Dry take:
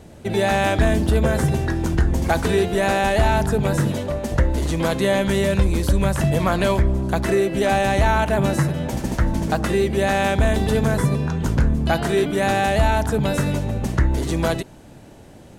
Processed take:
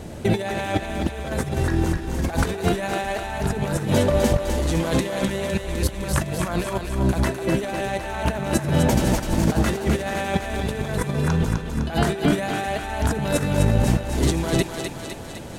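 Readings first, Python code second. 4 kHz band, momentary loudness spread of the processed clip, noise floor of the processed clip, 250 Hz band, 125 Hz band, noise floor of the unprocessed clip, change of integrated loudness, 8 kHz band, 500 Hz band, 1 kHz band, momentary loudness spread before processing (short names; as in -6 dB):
-1.5 dB, 7 LU, -34 dBFS, -1.5 dB, -2.5 dB, -43 dBFS, -3.0 dB, +1.0 dB, -4.0 dB, -5.0 dB, 4 LU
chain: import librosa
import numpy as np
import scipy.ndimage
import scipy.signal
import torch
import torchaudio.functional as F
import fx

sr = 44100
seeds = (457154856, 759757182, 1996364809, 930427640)

y = fx.over_compress(x, sr, threshold_db=-24.0, ratio=-0.5)
y = fx.echo_thinned(y, sr, ms=254, feedback_pct=64, hz=450.0, wet_db=-5)
y = y * 10.0 ** (2.0 / 20.0)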